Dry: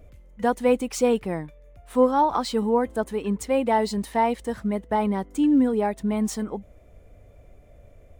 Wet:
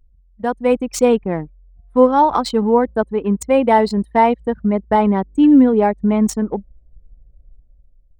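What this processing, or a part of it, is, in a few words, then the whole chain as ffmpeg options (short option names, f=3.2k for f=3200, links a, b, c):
voice memo with heavy noise removal: -af "anlmdn=25.1,dynaudnorm=f=130:g=11:m=10dB"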